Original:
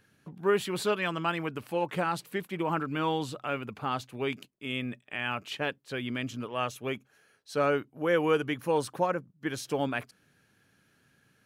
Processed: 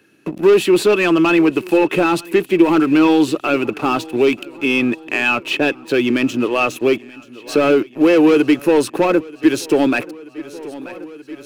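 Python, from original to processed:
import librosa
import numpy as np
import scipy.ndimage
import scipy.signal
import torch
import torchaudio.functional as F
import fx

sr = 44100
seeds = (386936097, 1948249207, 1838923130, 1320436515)

p1 = fx.highpass(x, sr, hz=240.0, slope=6)
p2 = fx.leveller(p1, sr, passes=3)
p3 = fx.small_body(p2, sr, hz=(330.0, 2600.0), ring_ms=30, db=15)
p4 = p3 + fx.echo_feedback(p3, sr, ms=932, feedback_pct=57, wet_db=-24.0, dry=0)
p5 = fx.band_squash(p4, sr, depth_pct=40)
y = p5 * librosa.db_to_amplitude(1.5)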